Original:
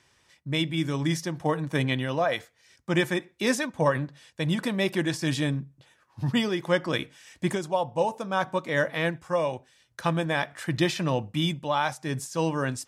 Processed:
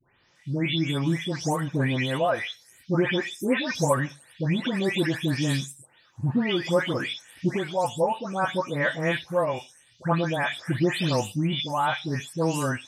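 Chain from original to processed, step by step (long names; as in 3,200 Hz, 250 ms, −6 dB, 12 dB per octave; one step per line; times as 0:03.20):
every frequency bin delayed by itself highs late, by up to 354 ms
level +2 dB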